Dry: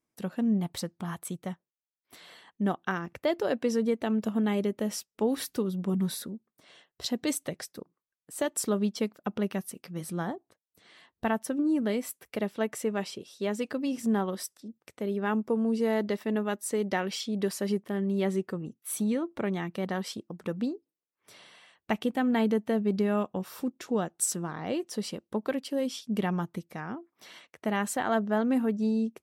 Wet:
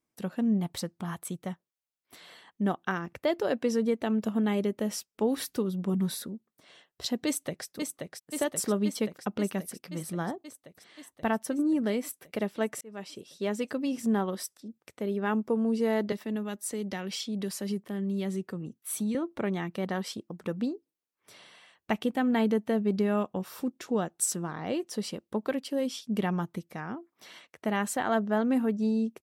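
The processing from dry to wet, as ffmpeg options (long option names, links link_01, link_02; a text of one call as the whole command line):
ffmpeg -i in.wav -filter_complex "[0:a]asplit=2[link_01][link_02];[link_02]afade=type=in:start_time=7.26:duration=0.01,afade=type=out:start_time=7.66:duration=0.01,aecho=0:1:530|1060|1590|2120|2650|3180|3710|4240|4770|5300|5830|6360:0.595662|0.446747|0.33506|0.251295|0.188471|0.141353|0.106015|0.0795113|0.0596335|0.0447251|0.0335438|0.0251579[link_03];[link_01][link_03]amix=inputs=2:normalize=0,asettb=1/sr,asplit=3[link_04][link_05][link_06];[link_04]atrim=end=16.124[link_07];[link_05]atrim=start=16.12:end=19.15,asetpts=PTS-STARTPTS,afade=type=in:duration=0.004:curve=qsin,afade=type=out:start_time=3.026:duration=0.004:curve=qsin,acrossover=split=230|3000[link_08][link_09][link_10];[link_09]acompressor=threshold=-41dB:ratio=2:attack=3.2:release=140:knee=2.83:detection=peak[link_11];[link_08][link_11][link_10]amix=inputs=3:normalize=0[link_12];[link_06]atrim=start=19.146[link_13];[link_07][link_12]acrossfade=duration=0.004:curve1=hsin:curve2=qsin[link_14];[link_14][link_13]acrossfade=duration=0.004:curve1=qsin:curve2=hsin,asplit=2[link_15][link_16];[link_15]atrim=end=12.81,asetpts=PTS-STARTPTS,afade=type=out:start_time=12.806:duration=0.004:curve=hsin[link_17];[link_16]atrim=start=12.81,asetpts=PTS-STARTPTS,afade=type=in:duration=0.76:curve=qsin[link_18];[link_17][link_18]concat=n=2:v=0:a=1" out.wav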